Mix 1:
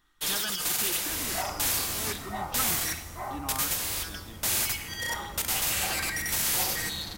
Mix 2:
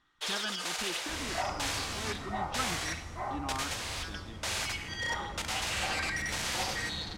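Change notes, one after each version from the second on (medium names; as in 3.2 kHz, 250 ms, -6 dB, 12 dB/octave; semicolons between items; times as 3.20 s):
first sound: add inverse Chebyshev high-pass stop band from 210 Hz, stop band 40 dB; master: add distance through air 94 m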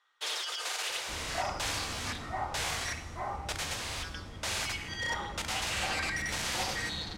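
speech: muted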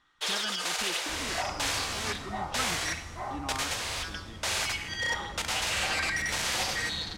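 speech: unmuted; first sound +4.0 dB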